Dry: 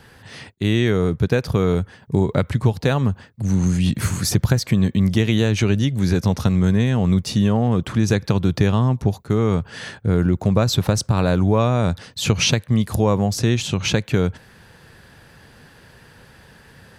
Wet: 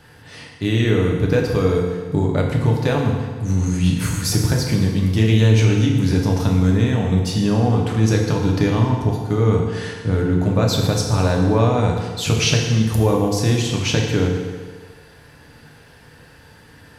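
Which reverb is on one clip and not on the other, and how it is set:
feedback delay network reverb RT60 1.6 s, low-frequency decay 0.85×, high-frequency decay 0.85×, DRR −1 dB
level −2.5 dB

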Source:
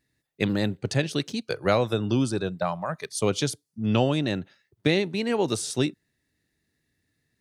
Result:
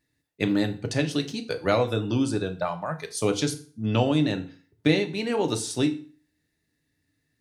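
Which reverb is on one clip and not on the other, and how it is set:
feedback delay network reverb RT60 0.42 s, low-frequency decay 1.1×, high-frequency decay 0.9×, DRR 5.5 dB
level −1.5 dB

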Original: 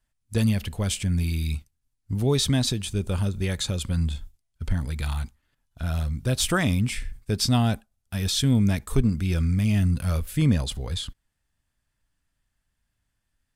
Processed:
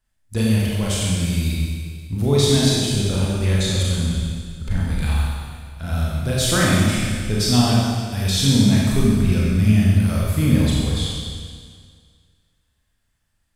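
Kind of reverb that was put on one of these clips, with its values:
four-comb reverb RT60 1.9 s, combs from 29 ms, DRR −5.5 dB

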